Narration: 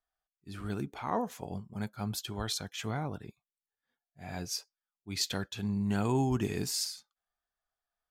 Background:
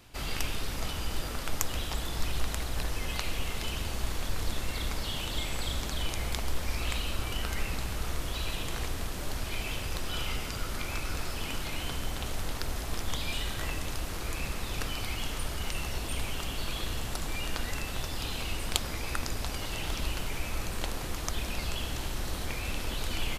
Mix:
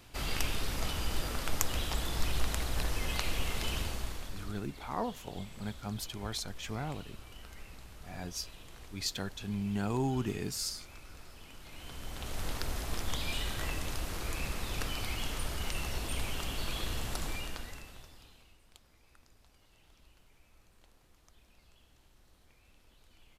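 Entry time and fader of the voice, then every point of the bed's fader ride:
3.85 s, −3.0 dB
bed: 0:03.79 −0.5 dB
0:04.67 −17 dB
0:11.56 −17 dB
0:12.46 −2 dB
0:17.27 −2 dB
0:18.60 −30 dB

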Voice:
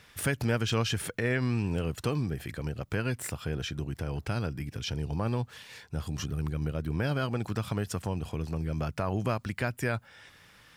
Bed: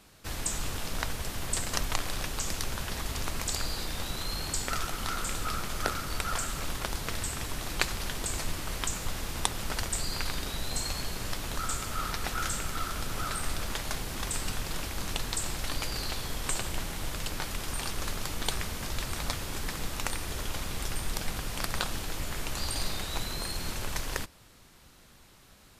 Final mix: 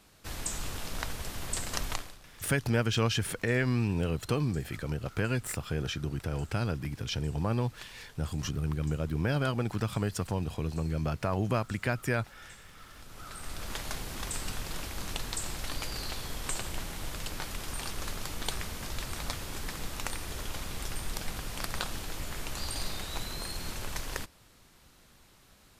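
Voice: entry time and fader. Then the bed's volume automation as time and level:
2.25 s, +0.5 dB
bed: 0:01.93 −3 dB
0:02.20 −21 dB
0:12.75 −21 dB
0:13.76 −3 dB

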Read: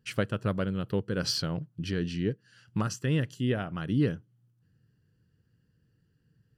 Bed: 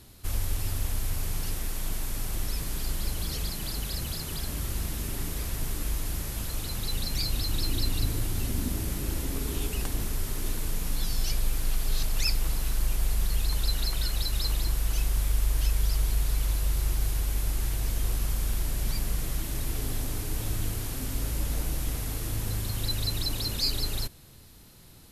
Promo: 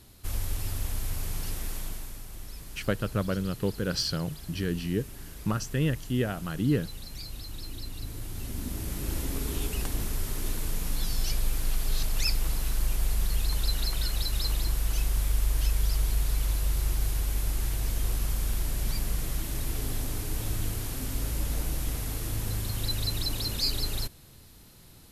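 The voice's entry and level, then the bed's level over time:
2.70 s, +0.5 dB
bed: 0:01.75 −2 dB
0:02.25 −11 dB
0:07.93 −11 dB
0:09.16 −0.5 dB

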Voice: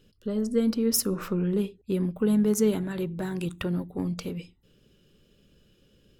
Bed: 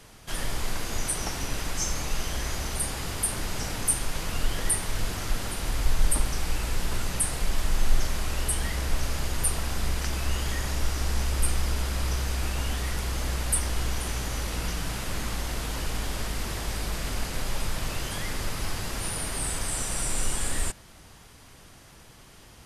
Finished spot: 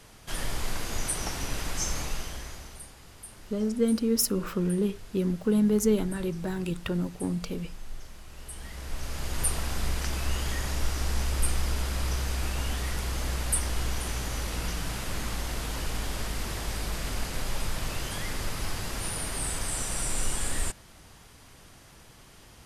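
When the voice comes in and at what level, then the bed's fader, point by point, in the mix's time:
3.25 s, −0.5 dB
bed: 0:02.01 −1.5 dB
0:02.95 −18 dB
0:08.27 −18 dB
0:09.42 −1.5 dB

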